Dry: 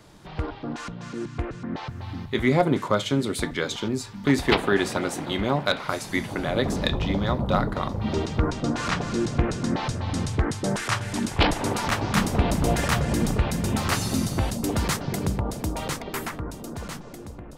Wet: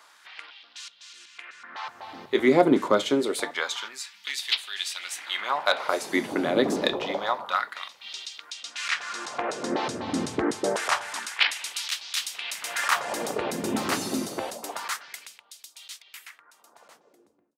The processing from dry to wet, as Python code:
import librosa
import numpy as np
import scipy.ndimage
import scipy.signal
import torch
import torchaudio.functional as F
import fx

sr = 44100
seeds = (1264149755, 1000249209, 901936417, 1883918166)

y = fx.fade_out_tail(x, sr, length_s=4.71)
y = fx.filter_lfo_highpass(y, sr, shape='sine', hz=0.27, low_hz=280.0, high_hz=3600.0, q=1.7)